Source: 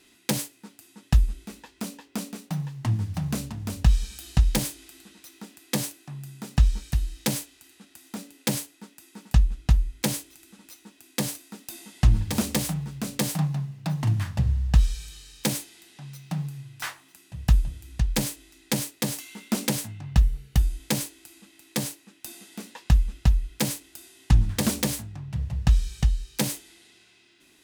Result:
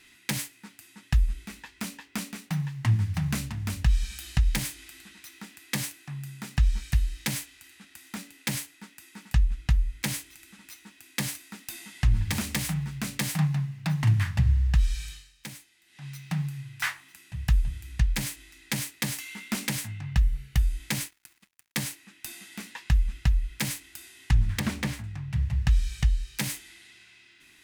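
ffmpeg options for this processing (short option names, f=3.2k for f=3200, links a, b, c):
-filter_complex "[0:a]asettb=1/sr,asplit=3[a][b][c];[a]atrim=end=21.044[d];[b]atrim=start=21.04:end=21.87,asetpts=PTS-STARTPTS,afade=t=in:d=0.004:c=qsin,afade=t=out:st=0.826:d=0.004:c=qsin,aeval=exprs='sgn(val(0))*max(abs(val(0))-0.00376,0)':c=same[e];[c]atrim=start=21.866[f];[d][e]acrossfade=d=0.004:c1=hsin:c2=qsin[g];[g][f]acrossfade=d=0.004:c1=qsin:c2=hsin,asettb=1/sr,asplit=3[h][i][j];[h]atrim=end=24.594[k];[i]atrim=start=24.59:end=25.04,asetpts=PTS-STARTPTS,afade=t=in:d=0.004:c=qsin,afade=t=out:st=0.446:d=0.004:c=qsin,lowpass=f=1.9k:p=1[l];[j]atrim=start=25.036[m];[k][l]acrossfade=d=0.004:c1=hsin:c2=qsin[n];[n][m]acrossfade=d=0.004:c1=qsin:c2=hsin,asplit=3[o][p][q];[o]atrim=end=15.38,asetpts=PTS-STARTPTS,afade=t=out:st=15.11:d=0.27:c=qua:silence=0.16788[r];[p]atrim=start=15.38:end=15.79,asetpts=PTS-STARTPTS,volume=-15.5dB[s];[q]atrim=start=15.79,asetpts=PTS-STARTPTS,afade=t=in:d=0.27:c=qua:silence=0.16788[t];[r][s][t]concat=n=3:v=0:a=1,equalizer=f=250:t=o:w=1:g=-4,equalizer=f=500:t=o:w=1:g=-9,equalizer=f=2k:t=o:w=1:g=8,alimiter=limit=-16dB:level=0:latency=1:release=233,lowshelf=f=250:g=3.5"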